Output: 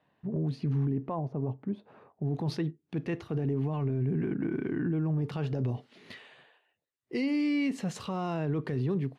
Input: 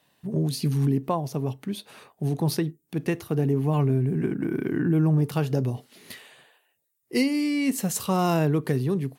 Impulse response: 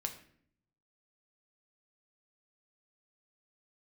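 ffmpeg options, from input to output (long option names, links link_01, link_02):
-af "asetnsamples=nb_out_samples=441:pad=0,asendcmd='1.19 lowpass f 1000;2.34 lowpass f 3500',lowpass=1800,alimiter=limit=-20.5dB:level=0:latency=1:release=16,volume=-2.5dB"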